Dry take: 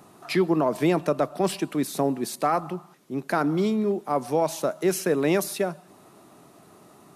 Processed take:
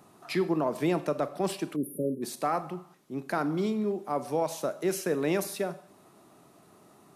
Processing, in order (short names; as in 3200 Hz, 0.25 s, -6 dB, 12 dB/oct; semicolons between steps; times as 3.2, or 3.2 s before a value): Schroeder reverb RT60 0.48 s, combs from 30 ms, DRR 13 dB; spectral delete 1.76–2.22, 600–9300 Hz; gain -5.5 dB